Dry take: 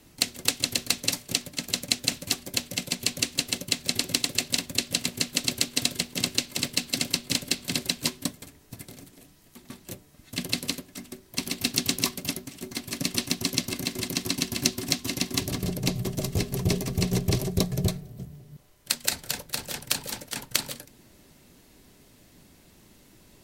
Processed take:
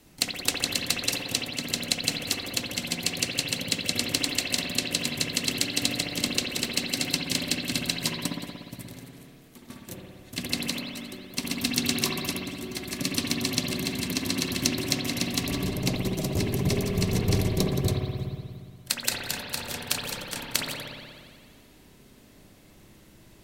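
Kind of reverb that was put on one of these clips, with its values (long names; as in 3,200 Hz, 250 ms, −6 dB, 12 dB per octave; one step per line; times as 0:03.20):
spring reverb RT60 1.9 s, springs 59 ms, chirp 30 ms, DRR −1 dB
level −1.5 dB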